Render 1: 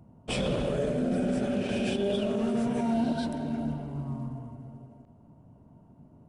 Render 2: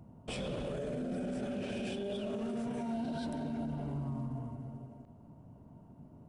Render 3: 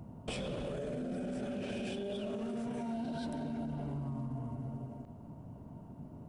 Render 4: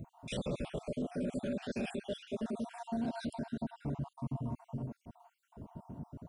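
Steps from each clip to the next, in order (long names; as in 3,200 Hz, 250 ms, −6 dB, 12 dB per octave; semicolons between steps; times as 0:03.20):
brickwall limiter −30.5 dBFS, peak gain reduction 11.5 dB
downward compressor 4 to 1, threshold −42 dBFS, peak gain reduction 7.5 dB; level +5.5 dB
time-frequency cells dropped at random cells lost 52%; level +3.5 dB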